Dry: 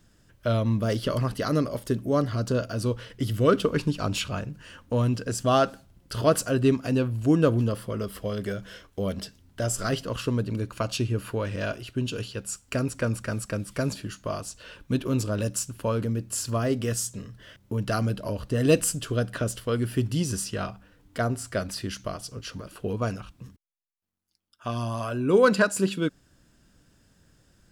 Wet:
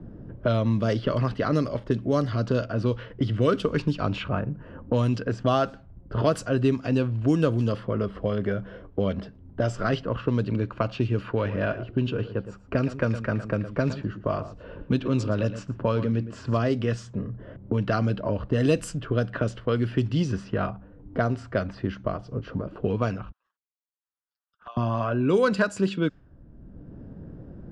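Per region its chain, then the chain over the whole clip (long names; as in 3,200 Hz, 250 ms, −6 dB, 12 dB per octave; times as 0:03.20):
0:11.26–0:16.64: low-pass filter 9,800 Hz + single-tap delay 113 ms −13.5 dB
0:23.32–0:24.77: high-pass filter 1,400 Hz 24 dB per octave + parametric band 2,200 Hz −14.5 dB 0.27 octaves + flanger swept by the level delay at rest 9.1 ms, full sweep at −44.5 dBFS
whole clip: low-pass that shuts in the quiet parts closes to 470 Hz, open at −18 dBFS; low-pass filter 6,600 Hz 12 dB per octave; multiband upward and downward compressor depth 70%; level +1.5 dB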